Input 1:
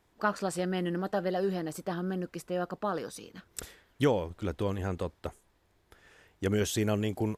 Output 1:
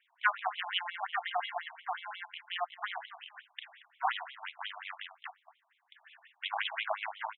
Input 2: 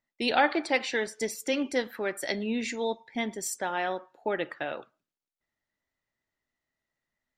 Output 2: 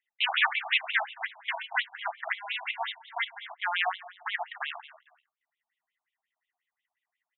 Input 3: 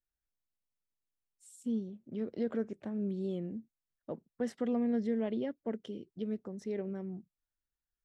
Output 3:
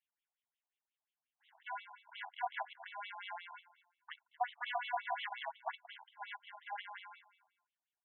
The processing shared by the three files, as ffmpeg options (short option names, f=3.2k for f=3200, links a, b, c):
-filter_complex "[0:a]equalizer=f=3.1k:t=o:w=0.67:g=6,bandreject=f=1.3k:w=8.6,aeval=exprs='0.422*(cos(1*acos(clip(val(0)/0.422,-1,1)))-cos(1*PI/2))+0.119*(cos(5*acos(clip(val(0)/0.422,-1,1)))-cos(5*PI/2))+0.119*(cos(6*acos(clip(val(0)/0.422,-1,1)))-cos(6*PI/2))+0.0668*(cos(7*acos(clip(val(0)/0.422,-1,1)))-cos(7*PI/2))':c=same,asplit=2[a][b];[b]acrusher=samples=36:mix=1:aa=0.000001,volume=-3.5dB[c];[a][c]amix=inputs=2:normalize=0,asoftclip=type=hard:threshold=-8.5dB,aecho=1:1:229|458:0.141|0.0297,aresample=8000,aresample=44100,afftfilt=real='re*between(b*sr/1024,870*pow(3000/870,0.5+0.5*sin(2*PI*5.6*pts/sr))/1.41,870*pow(3000/870,0.5+0.5*sin(2*PI*5.6*pts/sr))*1.41)':imag='im*between(b*sr/1024,870*pow(3000/870,0.5+0.5*sin(2*PI*5.6*pts/sr))/1.41,870*pow(3000/870,0.5+0.5*sin(2*PI*5.6*pts/sr))*1.41)':win_size=1024:overlap=0.75,volume=2dB"